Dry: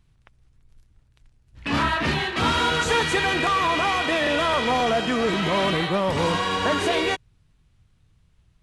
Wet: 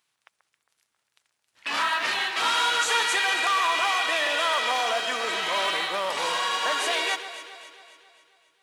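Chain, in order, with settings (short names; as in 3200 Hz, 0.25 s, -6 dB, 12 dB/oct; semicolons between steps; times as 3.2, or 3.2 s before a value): HPF 750 Hz 12 dB/oct; high shelf 5000 Hz +7 dB; modulation noise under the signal 34 dB; on a send: echo with dull and thin repeats by turns 0.135 s, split 1800 Hz, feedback 70%, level -9.5 dB; on the sum: gain -1.5 dB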